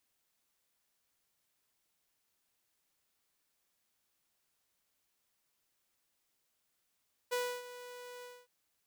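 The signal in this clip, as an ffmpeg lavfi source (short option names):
-f lavfi -i "aevalsrc='0.0376*(2*mod(492*t,1)-1)':d=1.162:s=44100,afade=t=in:d=0.02,afade=t=out:st=0.02:d=0.291:silence=0.168,afade=t=out:st=0.92:d=0.242"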